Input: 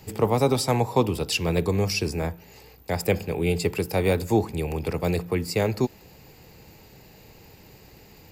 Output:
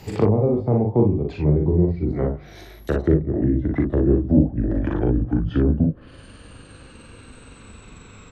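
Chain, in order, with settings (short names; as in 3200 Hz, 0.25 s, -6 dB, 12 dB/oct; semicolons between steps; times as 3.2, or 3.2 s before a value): gliding pitch shift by -11 st starting unshifted; high shelf 6000 Hz -4.5 dB; treble ducked by the level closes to 390 Hz, closed at -23 dBFS; early reflections 40 ms -4 dB, 59 ms -6.5 dB; Doppler distortion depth 0.15 ms; gain +6 dB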